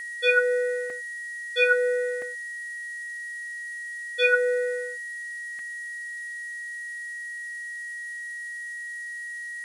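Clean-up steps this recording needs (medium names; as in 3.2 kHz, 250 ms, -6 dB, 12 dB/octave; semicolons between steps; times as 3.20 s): band-stop 1.9 kHz, Q 30; interpolate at 0.90/2.22/5.59 s, 2.1 ms; noise print and reduce 30 dB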